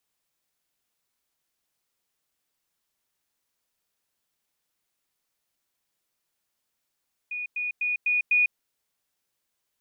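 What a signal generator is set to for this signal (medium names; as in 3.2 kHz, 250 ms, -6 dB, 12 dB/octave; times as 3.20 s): level ladder 2.46 kHz -29.5 dBFS, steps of 3 dB, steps 5, 0.15 s 0.10 s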